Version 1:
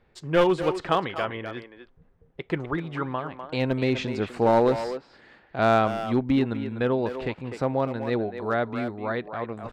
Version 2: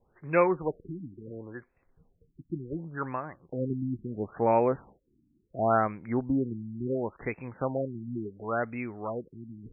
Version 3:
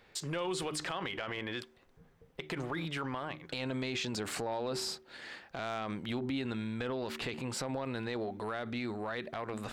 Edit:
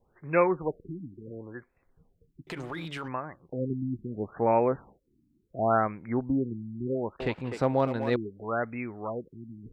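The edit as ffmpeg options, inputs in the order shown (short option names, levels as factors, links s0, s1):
-filter_complex "[1:a]asplit=3[s0][s1][s2];[s0]atrim=end=2.472[s3];[2:a]atrim=start=2.468:end=3.082[s4];[s1]atrim=start=3.078:end=7.202[s5];[0:a]atrim=start=7.198:end=8.162[s6];[s2]atrim=start=8.158[s7];[s3][s4]acrossfade=d=0.004:c1=hsin:c2=hsin[s8];[s8][s5]acrossfade=d=0.004:c1=hsin:c2=hsin[s9];[s9][s6]acrossfade=d=0.004:c1=hsin:c2=hsin[s10];[s10][s7]acrossfade=d=0.004:c1=hsin:c2=hsin"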